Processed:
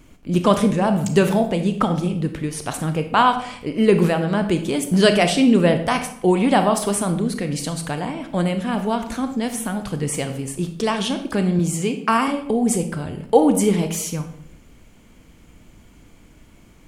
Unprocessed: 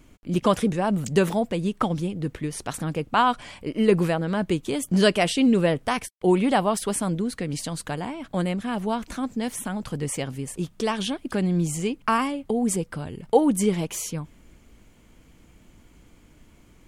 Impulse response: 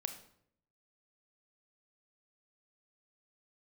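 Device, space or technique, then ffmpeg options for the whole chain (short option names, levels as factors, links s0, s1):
bathroom: -filter_complex "[0:a]asettb=1/sr,asplit=3[s0][s1][s2];[s0]atrim=end=11.594[s3];[s1]atrim=start=11.59:end=12.28,asetpts=PTS-STARTPTS,afade=t=in:d=0.004:c=qsin,afade=t=out:st=0.686:d=0.004:c=qsin,highpass=160[s4];[s2]atrim=start=12.276[s5];[s3][s4]acrossfade=d=0.004:c1=hsin:c2=qsin[s6];[s6][s5]acrossfade=d=0.004:c1=qsin:c2=hsin[s7];[1:a]atrim=start_sample=2205[s8];[s7][s8]afir=irnorm=-1:irlink=0,volume=1.88"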